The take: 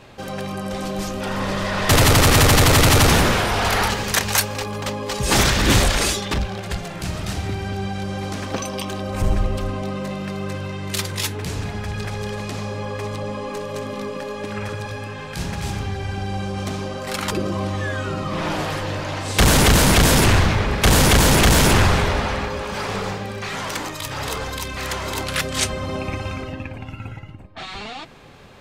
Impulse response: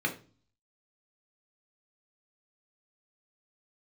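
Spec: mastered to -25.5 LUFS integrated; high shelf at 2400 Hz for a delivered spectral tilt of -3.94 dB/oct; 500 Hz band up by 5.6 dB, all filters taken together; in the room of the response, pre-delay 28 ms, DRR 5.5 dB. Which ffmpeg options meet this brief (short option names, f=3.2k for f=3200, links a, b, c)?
-filter_complex "[0:a]equalizer=f=500:t=o:g=6.5,highshelf=f=2.4k:g=5.5,asplit=2[a][b];[1:a]atrim=start_sample=2205,adelay=28[c];[b][c]afir=irnorm=-1:irlink=0,volume=-13dB[d];[a][d]amix=inputs=2:normalize=0,volume=-9dB"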